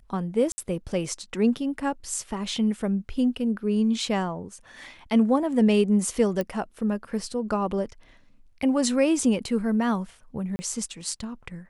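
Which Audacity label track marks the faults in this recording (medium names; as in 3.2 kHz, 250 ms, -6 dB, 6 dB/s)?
0.520000	0.580000	dropout 60 ms
6.410000	6.410000	pop -15 dBFS
10.560000	10.590000	dropout 30 ms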